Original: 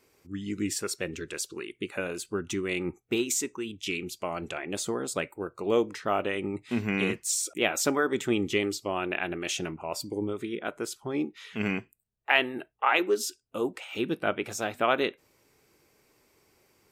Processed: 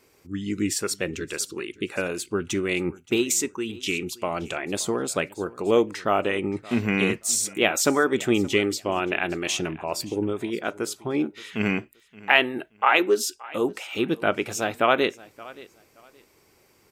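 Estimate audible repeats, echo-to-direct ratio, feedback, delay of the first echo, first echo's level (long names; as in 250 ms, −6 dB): 2, −21.0 dB, 23%, 574 ms, −21.0 dB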